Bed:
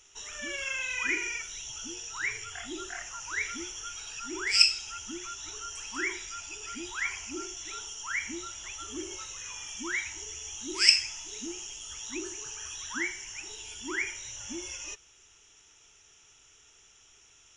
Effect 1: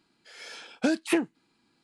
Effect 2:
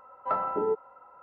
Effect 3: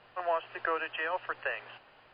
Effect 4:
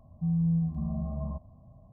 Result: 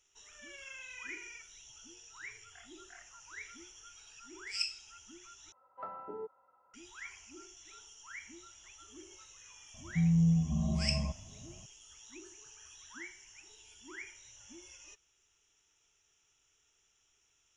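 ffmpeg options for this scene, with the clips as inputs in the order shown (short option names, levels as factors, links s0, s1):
-filter_complex "[0:a]volume=0.188,asplit=2[s0][s1];[s0]atrim=end=5.524[s2];[2:a]atrim=end=1.22,asetpts=PTS-STARTPTS,volume=0.168[s3];[s1]atrim=start=6.736[s4];[4:a]atrim=end=1.92,asetpts=PTS-STARTPTS,afade=t=in:d=0.004:c=hsin,afade=t=out:st=1.916:d=0.004:c=hsin,adelay=9740[s5];[s2][s3]acrossfade=d=0.004:c1=hsin:c2=hsin[s6];[s6][s4]acrossfade=d=0.004:c1=hsin:c2=hsin[s7];[s7][s5]amix=inputs=2:normalize=0"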